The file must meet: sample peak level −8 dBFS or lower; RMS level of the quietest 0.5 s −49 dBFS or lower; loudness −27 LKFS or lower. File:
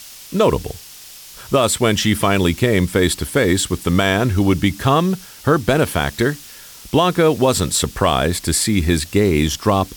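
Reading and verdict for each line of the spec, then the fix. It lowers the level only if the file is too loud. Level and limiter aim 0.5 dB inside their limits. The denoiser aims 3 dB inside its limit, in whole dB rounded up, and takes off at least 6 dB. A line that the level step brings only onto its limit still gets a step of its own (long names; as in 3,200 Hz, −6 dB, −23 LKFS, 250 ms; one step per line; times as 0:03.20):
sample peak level −3.5 dBFS: out of spec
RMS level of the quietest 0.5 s −39 dBFS: out of spec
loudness −17.0 LKFS: out of spec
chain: level −10.5 dB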